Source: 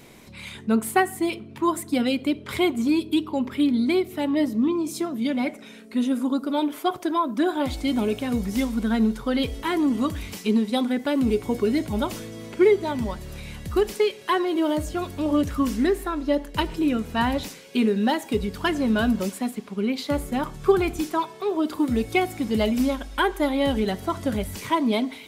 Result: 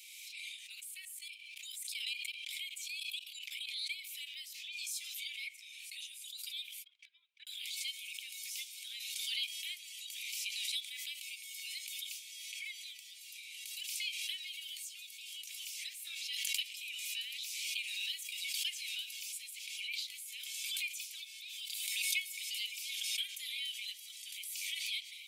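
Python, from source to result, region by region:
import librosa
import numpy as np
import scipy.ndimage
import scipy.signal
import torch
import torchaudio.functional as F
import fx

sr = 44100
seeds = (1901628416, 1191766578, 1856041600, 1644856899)

y = fx.chain(x, sr, fx.highpass(hz=380.0, slope=24),
    fx.notch(hz=780.0, q=13.0),
    fx.level_steps(step_db=14), at=(0.8, 3.99))
y = fx.chain(y, sr, fx.lowpass(hz=1100.0, slope=12),
    fx.gate_flip(shuts_db=-25.0, range_db=-28),
    fx.level_steps(step_db=16), at=(6.84, 7.47))
y = scipy.signal.sosfilt(scipy.signal.cheby1(6, 1.0, 2300.0, 'highpass', fs=sr, output='sos'), y)
y = fx.pre_swell(y, sr, db_per_s=22.0)
y = F.gain(torch.from_numpy(y), -5.0).numpy()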